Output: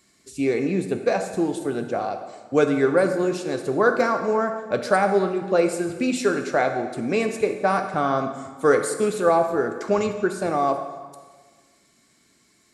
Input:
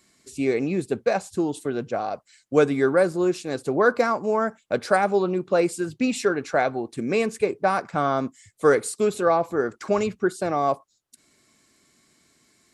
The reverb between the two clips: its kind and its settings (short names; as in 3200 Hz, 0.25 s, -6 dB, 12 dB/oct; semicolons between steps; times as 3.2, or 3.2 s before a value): plate-style reverb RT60 1.5 s, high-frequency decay 0.85×, DRR 6 dB